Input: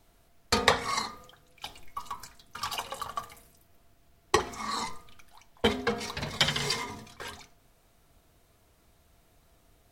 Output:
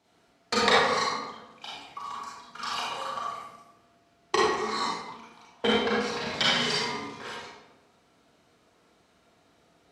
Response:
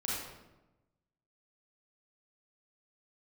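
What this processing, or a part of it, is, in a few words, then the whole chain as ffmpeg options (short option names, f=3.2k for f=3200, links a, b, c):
supermarket ceiling speaker: -filter_complex "[0:a]highpass=200,lowpass=6.2k[a];[1:a]atrim=start_sample=2205[b];[a][b]afir=irnorm=-1:irlink=0"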